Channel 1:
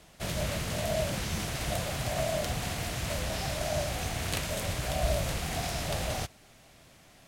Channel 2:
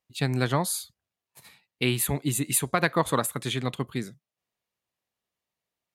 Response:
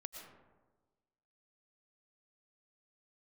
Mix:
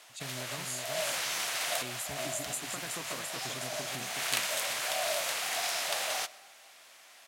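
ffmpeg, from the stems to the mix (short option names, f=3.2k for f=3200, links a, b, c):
-filter_complex "[0:a]highpass=890,volume=3dB,asplit=2[a][b];[b]volume=-9.5dB[c];[1:a]acompressor=threshold=-27dB:ratio=6,equalizer=f=6.9k:t=o:w=0.57:g=14.5,bandreject=f=50:t=h:w=6,bandreject=f=100:t=h:w=6,bandreject=f=150:t=h:w=6,volume=-13dB,asplit=3[d][e][f];[e]volume=-4.5dB[g];[f]apad=whole_len=321022[h];[a][h]sidechaincompress=threshold=-50dB:ratio=3:attack=11:release=257[i];[2:a]atrim=start_sample=2205[j];[c][j]afir=irnorm=-1:irlink=0[k];[g]aecho=0:1:371|742|1113|1484|1855:1|0.32|0.102|0.0328|0.0105[l];[i][d][k][l]amix=inputs=4:normalize=0"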